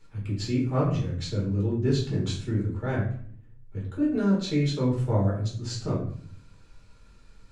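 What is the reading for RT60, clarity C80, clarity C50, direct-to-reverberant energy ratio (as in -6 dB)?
0.55 s, 9.5 dB, 5.5 dB, -5.5 dB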